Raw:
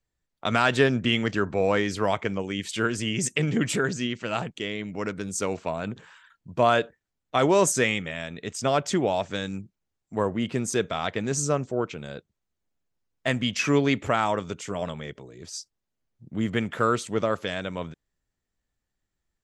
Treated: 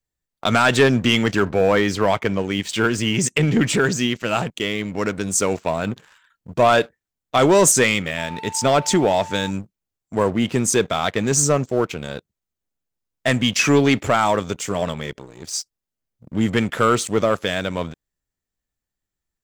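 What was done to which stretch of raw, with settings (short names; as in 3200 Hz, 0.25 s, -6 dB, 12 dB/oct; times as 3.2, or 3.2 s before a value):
1.49–3.81 air absorption 62 m
8.17–9.49 whine 890 Hz -38 dBFS
whole clip: high shelf 7700 Hz +8.5 dB; sample leveller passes 2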